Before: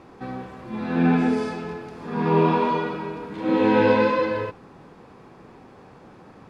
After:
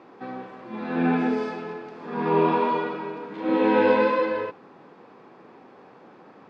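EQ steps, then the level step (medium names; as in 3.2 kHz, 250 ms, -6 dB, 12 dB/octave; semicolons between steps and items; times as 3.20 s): high-pass 250 Hz 12 dB/octave; distance through air 130 m; 0.0 dB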